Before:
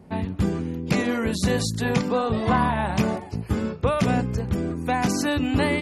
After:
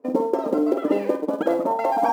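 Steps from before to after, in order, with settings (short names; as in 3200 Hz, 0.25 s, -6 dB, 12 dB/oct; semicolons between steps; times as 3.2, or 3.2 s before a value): gate -28 dBFS, range -13 dB; wide varispeed 2.73×; band-pass sweep 410 Hz -> 2800 Hz, 0.91–4.83; in parallel at -7.5 dB: short-mantissa float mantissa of 2-bit; on the sum: small resonant body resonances 280/910 Hz, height 12 dB, ringing for 30 ms; on a send: flutter echo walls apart 8.7 m, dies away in 0.38 s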